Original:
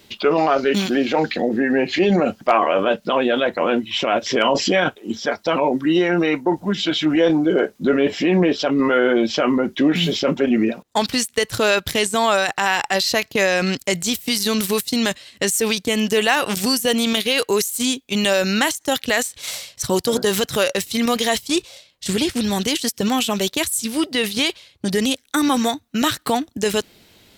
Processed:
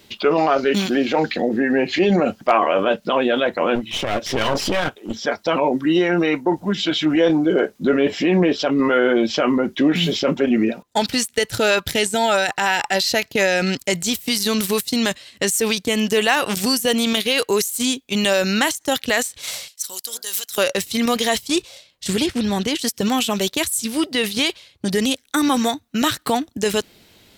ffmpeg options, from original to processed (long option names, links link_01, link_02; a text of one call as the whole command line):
ffmpeg -i in.wav -filter_complex "[0:a]asettb=1/sr,asplit=3[link_01][link_02][link_03];[link_01]atrim=end=3.754[link_04];[link_02]atrim=start=3.75:end=5.15,asetpts=PTS-STARTPTS,afade=type=in:duration=0.004:curve=qsin,afade=type=out:start_time=1.396:duration=0.004:curve=qsin,aeval=exprs='clip(val(0),-1,0.0447)':channel_layout=same[link_05];[link_03]atrim=start=5.146[link_06];[link_04][link_05]acrossfade=duration=0.004:curve1=hsin:curve2=qsin[link_07];[link_07][link_06]acrossfade=duration=0.004:curve1=qsin:curve2=hsin,asettb=1/sr,asplit=3[link_08][link_09][link_10];[link_08]atrim=end=10.644[link_11];[link_09]atrim=start=10.64:end=14.21,asetpts=PTS-STARTPTS,afade=type=in:duration=0.004:curve=qsin,afade=type=out:start_time=3.566:duration=0.004:curve=qsin,asuperstop=centerf=1100:order=20:qfactor=7.1[link_12];[link_10]atrim=start=14.206[link_13];[link_11][link_12]acrossfade=duration=0.004:curve1=hsin:curve2=qsin[link_14];[link_14][link_13]acrossfade=duration=0.004:curve1=qsin:curve2=hsin,asettb=1/sr,asplit=3[link_15][link_16][link_17];[link_15]atrim=end=19.684[link_18];[link_16]atrim=start=19.68:end=20.58,asetpts=PTS-STARTPTS,afade=type=in:duration=0.004:curve=qsin,afade=type=out:start_time=0.896:duration=0.004:curve=qsin,aderivative[link_19];[link_17]atrim=start=20.576[link_20];[link_18][link_19]acrossfade=duration=0.004:curve1=hsin:curve2=qsin[link_21];[link_21][link_20]acrossfade=duration=0.004:curve1=qsin:curve2=hsin,asettb=1/sr,asplit=3[link_22][link_23][link_24];[link_22]atrim=end=22.264[link_25];[link_23]atrim=start=22.26:end=22.79,asetpts=PTS-STARTPTS,afade=type=in:duration=0.004:curve=qsin,afade=type=out:start_time=0.526:duration=0.004:curve=qsin,aemphasis=mode=reproduction:type=cd[link_26];[link_24]atrim=start=22.786[link_27];[link_25][link_26]acrossfade=duration=0.004:curve1=hsin:curve2=qsin[link_28];[link_28][link_27]acrossfade=duration=0.004:curve1=qsin:curve2=hsin" out.wav